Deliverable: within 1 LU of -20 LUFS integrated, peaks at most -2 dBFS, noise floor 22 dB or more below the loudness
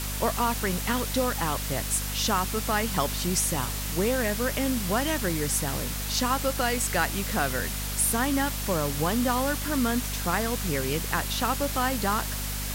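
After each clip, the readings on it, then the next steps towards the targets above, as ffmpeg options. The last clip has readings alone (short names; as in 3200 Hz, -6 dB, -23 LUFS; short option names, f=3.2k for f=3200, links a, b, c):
hum 50 Hz; harmonics up to 250 Hz; hum level -31 dBFS; noise floor -32 dBFS; noise floor target -49 dBFS; loudness -26.5 LUFS; peak -11.5 dBFS; loudness target -20.0 LUFS
-> -af "bandreject=f=50:t=h:w=4,bandreject=f=100:t=h:w=4,bandreject=f=150:t=h:w=4,bandreject=f=200:t=h:w=4,bandreject=f=250:t=h:w=4"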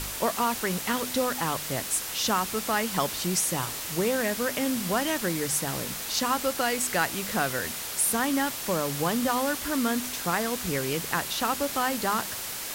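hum none; noise floor -35 dBFS; noise floor target -49 dBFS
-> -af "afftdn=nr=14:nf=-35"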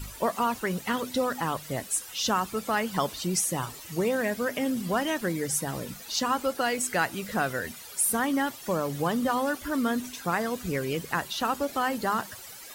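noise floor -44 dBFS; noise floor target -51 dBFS
-> -af "afftdn=nr=7:nf=-44"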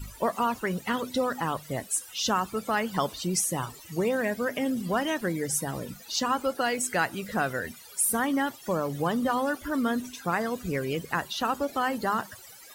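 noise floor -48 dBFS; noise floor target -51 dBFS
-> -af "afftdn=nr=6:nf=-48"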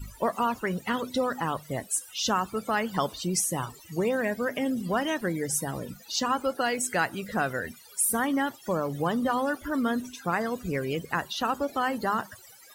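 noise floor -51 dBFS; loudness -28.5 LUFS; peak -12.5 dBFS; loudness target -20.0 LUFS
-> -af "volume=8.5dB"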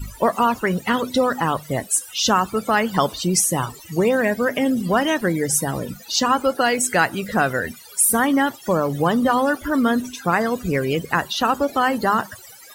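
loudness -20.0 LUFS; peak -4.0 dBFS; noise floor -43 dBFS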